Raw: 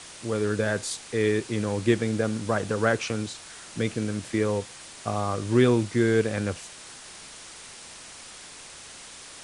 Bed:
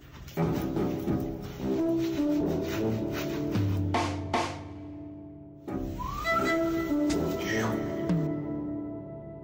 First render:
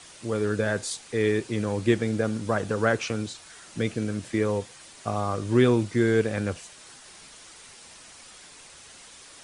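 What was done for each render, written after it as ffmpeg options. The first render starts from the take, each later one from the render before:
-af "afftdn=nr=6:nf=-45"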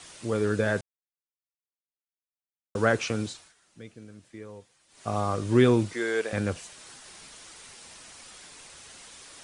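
-filter_complex "[0:a]asettb=1/sr,asplit=3[s0][s1][s2];[s0]atrim=end=5.934[s3];[s1]atrim=start=5.93:end=6.33,asetpts=PTS-STARTPTS,afade=t=in:d=0.004:c=qsin,afade=t=out:st=0.396:d=0.004:c=qsin,highpass=540[s4];[s2]atrim=start=6.326[s5];[s3][s4]acrossfade=d=0.004:c1=hsin:c2=qsin[s6];[s6][s5]acrossfade=d=0.004:c1=qsin:c2=hsin,asplit=5[s7][s8][s9][s10][s11];[s7]atrim=end=0.81,asetpts=PTS-STARTPTS,afade=t=out:st=0.806:d=0.004:c=hsin[s12];[s8]atrim=start=0.81:end=2.75,asetpts=PTS-STARTPTS,volume=0[s13];[s9]atrim=start=2.75:end=3.54,asetpts=PTS-STARTPTS,afade=t=in:d=0.004:c=hsin,afade=t=out:st=0.52:d=0.27:silence=0.125893[s14];[s10]atrim=start=3.54:end=4.88,asetpts=PTS-STARTPTS,volume=0.126[s15];[s11]atrim=start=4.88,asetpts=PTS-STARTPTS,afade=t=in:d=0.27:silence=0.125893[s16];[s12][s13][s14][s15][s16]concat=n=5:v=0:a=1"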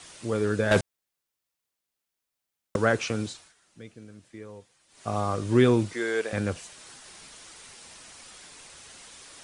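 -filter_complex "[0:a]asettb=1/sr,asplit=3[s0][s1][s2];[s0]atrim=end=0.714[s3];[s1]atrim=start=0.71:end=2.76,asetpts=PTS-STARTPTS,afade=t=in:d=0.004:c=qsin,afade=t=out:st=2.046:d=0.004:c=qsin,aeval=exprs='0.2*sin(PI/2*2.24*val(0)/0.2)':c=same[s4];[s2]atrim=start=2.756[s5];[s3][s4]acrossfade=d=0.004:c1=hsin:c2=qsin[s6];[s6][s5]acrossfade=d=0.004:c1=qsin:c2=hsin"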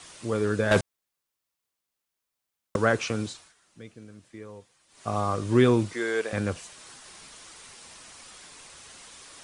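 -af "equalizer=f=1100:w=4.2:g=3"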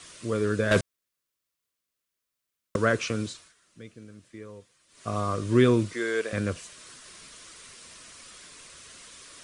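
-af "equalizer=f=820:w=5.4:g=-13.5"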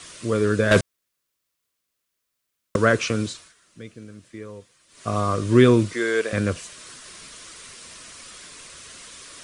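-af "volume=1.88"

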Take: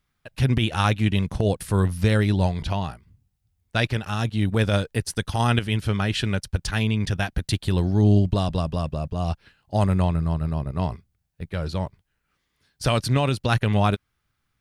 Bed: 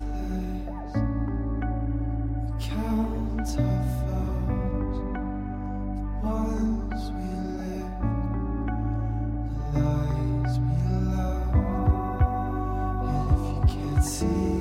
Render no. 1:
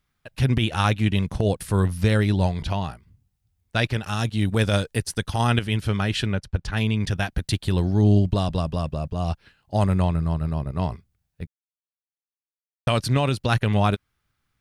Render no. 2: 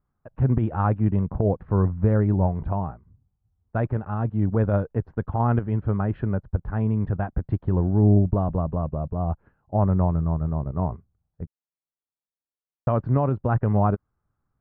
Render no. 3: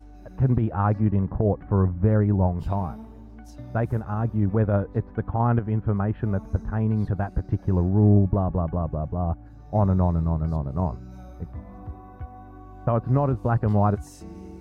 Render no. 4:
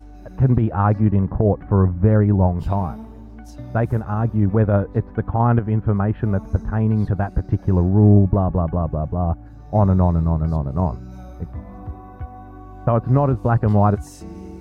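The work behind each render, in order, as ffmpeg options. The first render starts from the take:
-filter_complex "[0:a]asettb=1/sr,asplit=3[s0][s1][s2];[s0]atrim=end=4.034[s3];[s1]atrim=start=4.03:end=5.03,asetpts=PTS-STARTPTS,afade=t=in:d=0.004:c=qsin,afade=t=out:st=0.996:d=0.004:c=qsin,equalizer=f=8300:w=0.52:g=5[s4];[s2]atrim=start=5.026[s5];[s3][s4]acrossfade=d=0.004:c1=hsin:c2=qsin[s6];[s6][s5]acrossfade=d=0.004:c1=qsin:c2=hsin,asplit=3[s7][s8][s9];[s7]afade=t=out:st=6.25:d=0.02[s10];[s8]lowpass=f=2100:p=1,afade=t=in:st=6.25:d=0.02,afade=t=out:st=6.76:d=0.02[s11];[s9]afade=t=in:st=6.76:d=0.02[s12];[s10][s11][s12]amix=inputs=3:normalize=0,asplit=3[s13][s14][s15];[s13]atrim=end=11.47,asetpts=PTS-STARTPTS,afade=t=out:st=11.466:d=0.004:c=hsin[s16];[s14]atrim=start=11.47:end=12.87,asetpts=PTS-STARTPTS,volume=0[s17];[s15]atrim=start=12.87,asetpts=PTS-STARTPTS,afade=t=in:d=0.004:c=hsin[s18];[s16][s17][s18]concat=n=3:v=0:a=1"
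-af "lowpass=f=1200:w=0.5412,lowpass=f=1200:w=1.3066"
-filter_complex "[1:a]volume=0.168[s0];[0:a][s0]amix=inputs=2:normalize=0"
-af "volume=1.78"

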